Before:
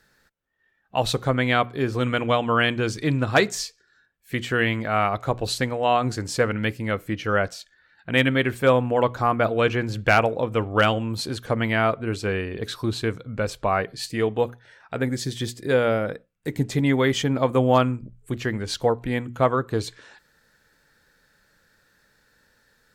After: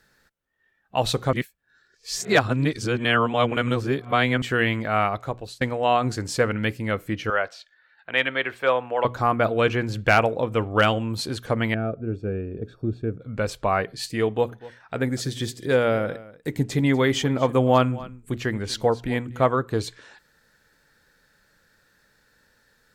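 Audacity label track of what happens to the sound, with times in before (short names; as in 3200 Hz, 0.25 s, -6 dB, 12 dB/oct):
1.330000	4.420000	reverse
5.010000	5.610000	fade out, to -22.5 dB
7.300000	9.050000	three-band isolator lows -18 dB, under 460 Hz, highs -15 dB, over 4600 Hz
11.740000	13.220000	running mean over 44 samples
14.270000	19.460000	echo 0.244 s -19 dB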